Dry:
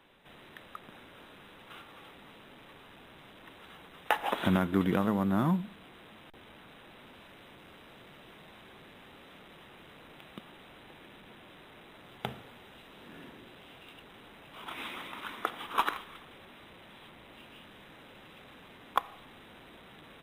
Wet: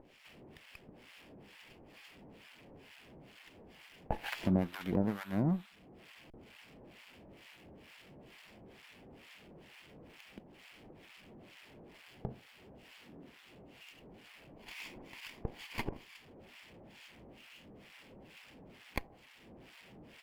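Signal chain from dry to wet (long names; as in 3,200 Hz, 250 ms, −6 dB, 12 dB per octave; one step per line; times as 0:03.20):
lower of the sound and its delayed copy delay 0.39 ms
upward compression, threshold −46 dBFS
two-band tremolo in antiphase 2.2 Hz, depth 100%, crossover 930 Hz
level −2 dB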